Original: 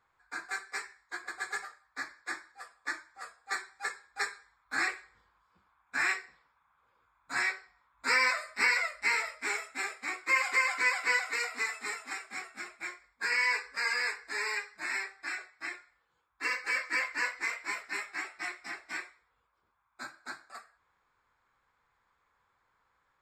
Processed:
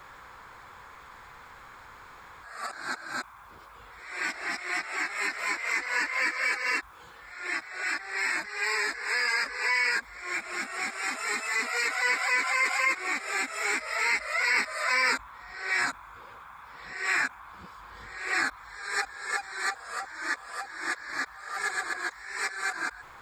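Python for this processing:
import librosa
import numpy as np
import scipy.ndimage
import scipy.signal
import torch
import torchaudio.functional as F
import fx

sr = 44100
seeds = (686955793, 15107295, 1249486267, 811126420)

y = np.flip(x).copy()
y = fx.env_flatten(y, sr, amount_pct=50)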